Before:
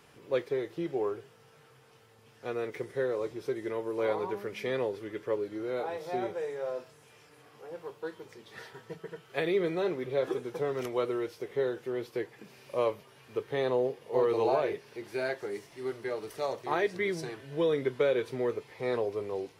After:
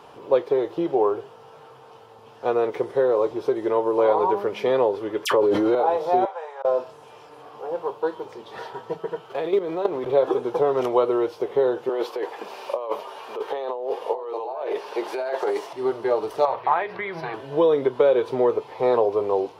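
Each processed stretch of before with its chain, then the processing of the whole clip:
5.25–5.75 dispersion lows, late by 65 ms, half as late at 1900 Hz + fast leveller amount 100%
6.25–6.65 HPF 760 Hz 24 dB/oct + high shelf 3200 Hz -10.5 dB + auto swell 0.148 s
9.3–10.13 G.711 law mismatch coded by mu + level quantiser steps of 13 dB
11.89–15.73 HPF 460 Hz + negative-ratio compressor -41 dBFS
16.45–17.34 notches 60/120/180/240/300/360/420/480 Hz + compressor 4:1, threshold -31 dBFS + EQ curve 140 Hz 0 dB, 290 Hz -11 dB, 500 Hz -7 dB, 800 Hz 0 dB, 1200 Hz +3 dB, 2200 Hz +7 dB, 3200 Hz -2 dB, 5000 Hz -8 dB, 7600 Hz -26 dB, 11000 Hz -10 dB
whole clip: compressor 2.5:1, threshold -30 dBFS; EQ curve 160 Hz 0 dB, 930 Hz +15 dB, 2000 Hz -3 dB, 3000 Hz +4 dB, 8600 Hz -5 dB; gain +4.5 dB

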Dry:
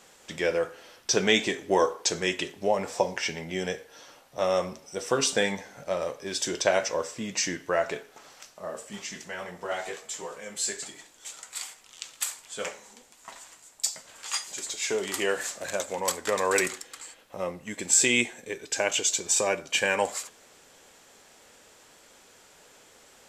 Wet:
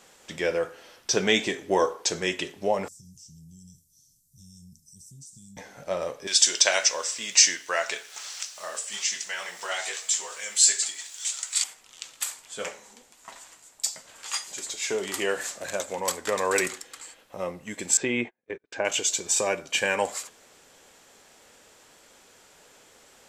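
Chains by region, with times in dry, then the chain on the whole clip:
2.88–5.57 inverse Chebyshev band-stop 630–1800 Hz, stop band 80 dB + compressor 4:1, threshold -46 dBFS
6.27–11.64 weighting filter ITU-R 468 + requantised 10-bit, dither none + mismatched tape noise reduction encoder only
17.97–18.85 gate -38 dBFS, range -37 dB + LPF 1800 Hz + mismatched tape noise reduction encoder only
whole clip: dry

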